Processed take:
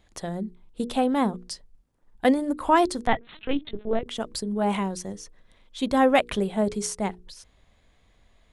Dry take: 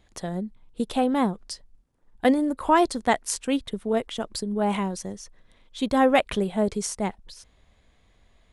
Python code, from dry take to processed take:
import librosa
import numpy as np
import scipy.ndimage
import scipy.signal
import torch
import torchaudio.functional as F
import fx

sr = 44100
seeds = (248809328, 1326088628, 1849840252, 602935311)

y = fx.hum_notches(x, sr, base_hz=60, count=8)
y = fx.lpc_vocoder(y, sr, seeds[0], excitation='pitch_kept', order=8, at=(3.07, 4.06))